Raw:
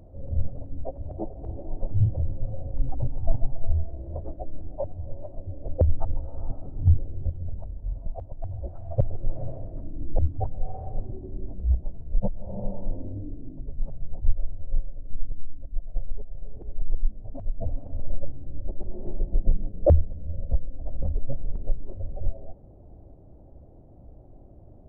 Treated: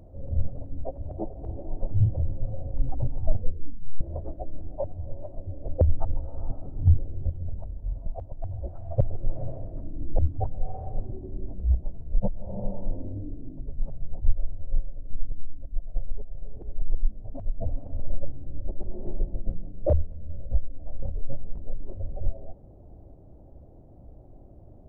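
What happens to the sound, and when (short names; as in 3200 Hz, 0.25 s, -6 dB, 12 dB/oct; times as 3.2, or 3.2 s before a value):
3.26 tape stop 0.75 s
19.31–21.78 detuned doubles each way 20 cents -> 37 cents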